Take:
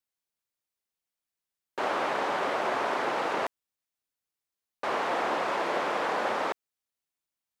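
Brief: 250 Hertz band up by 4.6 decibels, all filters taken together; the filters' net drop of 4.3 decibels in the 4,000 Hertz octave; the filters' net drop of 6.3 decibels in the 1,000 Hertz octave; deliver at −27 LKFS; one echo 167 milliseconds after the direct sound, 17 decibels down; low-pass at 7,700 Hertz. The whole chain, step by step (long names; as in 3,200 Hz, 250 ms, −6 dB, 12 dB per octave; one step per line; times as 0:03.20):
low-pass filter 7,700 Hz
parametric band 250 Hz +7 dB
parametric band 1,000 Hz −8.5 dB
parametric band 4,000 Hz −5 dB
single-tap delay 167 ms −17 dB
level +5.5 dB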